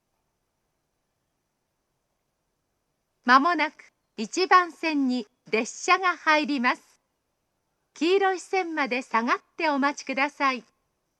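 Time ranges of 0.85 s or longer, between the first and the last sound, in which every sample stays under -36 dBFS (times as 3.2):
6.75–7.96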